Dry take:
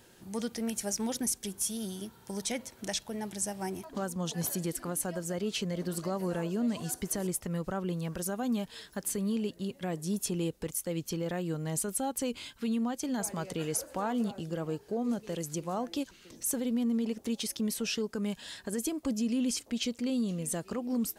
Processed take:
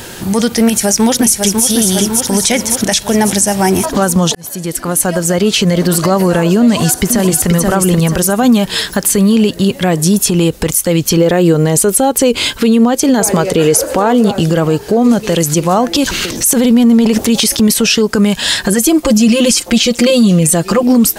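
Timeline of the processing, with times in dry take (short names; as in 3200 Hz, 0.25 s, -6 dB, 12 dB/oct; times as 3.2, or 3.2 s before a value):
0.64–1.65 echo throw 0.55 s, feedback 60%, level -7.5 dB
4.35–6.06 fade in
6.62–7.49 echo throw 0.48 s, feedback 25%, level -5 dB
10.26–10.66 compressor, threshold -33 dBFS
11.17–14.32 bell 430 Hz +8 dB 0.84 oct
15.94–17.74 transient shaper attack -2 dB, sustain +10 dB
18.63–20.83 comb 5.7 ms, depth 95%
whole clip: bell 300 Hz -3 dB 2.6 oct; compressor 2.5:1, threshold -37 dBFS; maximiser +32 dB; gain -1 dB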